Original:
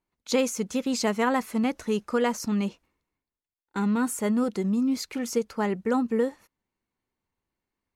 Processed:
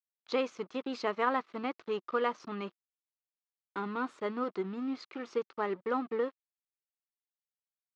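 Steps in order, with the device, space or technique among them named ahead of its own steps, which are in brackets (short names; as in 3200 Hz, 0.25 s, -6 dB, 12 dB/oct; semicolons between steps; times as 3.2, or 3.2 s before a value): blown loudspeaker (crossover distortion -42 dBFS; speaker cabinet 190–4200 Hz, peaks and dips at 220 Hz -9 dB, 360 Hz +5 dB, 1200 Hz +9 dB); gain -6 dB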